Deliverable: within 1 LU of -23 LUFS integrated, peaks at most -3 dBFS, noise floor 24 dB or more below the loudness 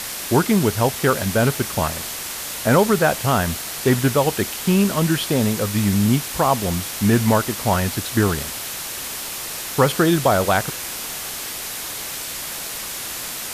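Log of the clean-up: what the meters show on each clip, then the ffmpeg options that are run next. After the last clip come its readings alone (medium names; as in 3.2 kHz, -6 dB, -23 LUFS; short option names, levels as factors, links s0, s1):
noise floor -30 dBFS; noise floor target -45 dBFS; loudness -20.5 LUFS; peak level -3.5 dBFS; loudness target -23.0 LUFS
-> -af "afftdn=nr=15:nf=-30"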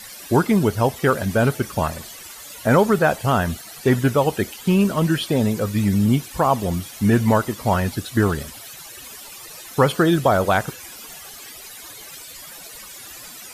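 noise floor -39 dBFS; noise floor target -44 dBFS
-> -af "afftdn=nr=6:nf=-39"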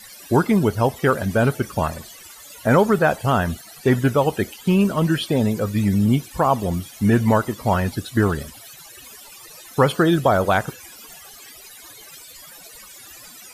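noise floor -43 dBFS; noise floor target -44 dBFS
-> -af "afftdn=nr=6:nf=-43"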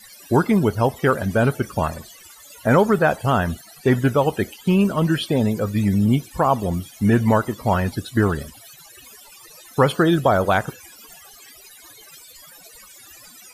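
noise floor -46 dBFS; loudness -20.0 LUFS; peak level -4.5 dBFS; loudness target -23.0 LUFS
-> -af "volume=0.708"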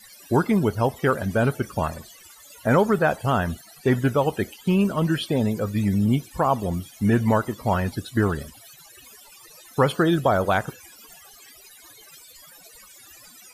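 loudness -23.0 LUFS; peak level -7.5 dBFS; noise floor -49 dBFS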